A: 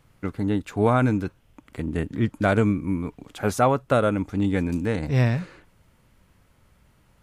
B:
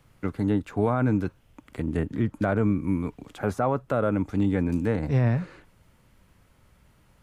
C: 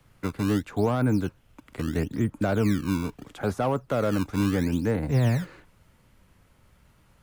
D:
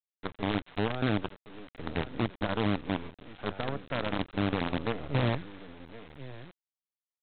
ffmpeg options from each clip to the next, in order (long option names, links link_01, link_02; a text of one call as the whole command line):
ffmpeg -i in.wav -filter_complex "[0:a]acrossover=split=120|1900[link_01][link_02][link_03];[link_03]acompressor=threshold=-48dB:ratio=6[link_04];[link_01][link_02][link_04]amix=inputs=3:normalize=0,alimiter=limit=-14dB:level=0:latency=1:release=46" out.wav
ffmpeg -i in.wav -filter_complex "[0:a]acrossover=split=280|640[link_01][link_02][link_03];[link_01]acrusher=samples=20:mix=1:aa=0.000001:lfo=1:lforange=32:lforate=0.75[link_04];[link_03]volume=27.5dB,asoftclip=hard,volume=-27.5dB[link_05];[link_04][link_02][link_05]amix=inputs=3:normalize=0" out.wav
ffmpeg -i in.wav -af "aecho=1:1:1069:0.266,aresample=8000,acrusher=bits=4:dc=4:mix=0:aa=0.000001,aresample=44100,volume=-7dB" out.wav